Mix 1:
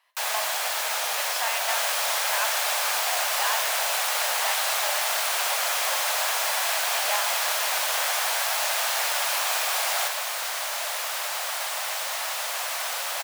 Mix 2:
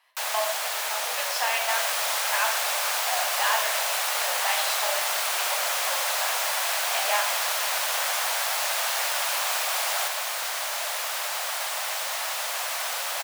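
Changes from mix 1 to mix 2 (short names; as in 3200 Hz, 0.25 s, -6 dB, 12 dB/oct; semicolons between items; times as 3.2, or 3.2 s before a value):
speech: send +8.5 dB; first sound: send -11.0 dB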